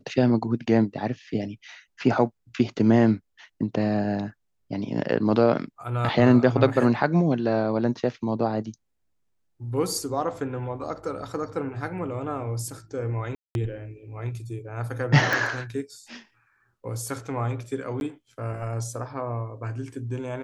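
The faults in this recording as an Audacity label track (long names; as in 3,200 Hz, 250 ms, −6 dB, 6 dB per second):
13.350000	13.550000	drop-out 201 ms
15.330000	15.330000	click
18.000000	18.010000	drop-out 11 ms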